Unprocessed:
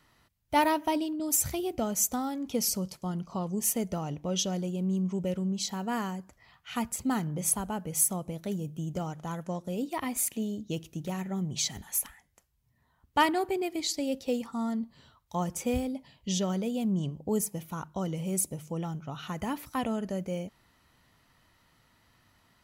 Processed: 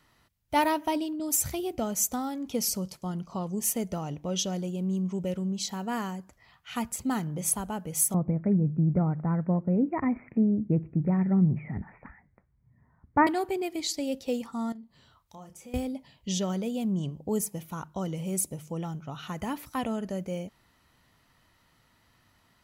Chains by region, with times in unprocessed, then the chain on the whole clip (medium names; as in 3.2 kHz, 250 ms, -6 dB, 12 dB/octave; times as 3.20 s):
8.14–13.27 s: steep low-pass 2.3 kHz 96 dB/octave + peaking EQ 150 Hz +11 dB 2.6 oct
14.72–15.74 s: compression 2:1, threshold -57 dBFS + doubling 32 ms -8.5 dB
whole clip: none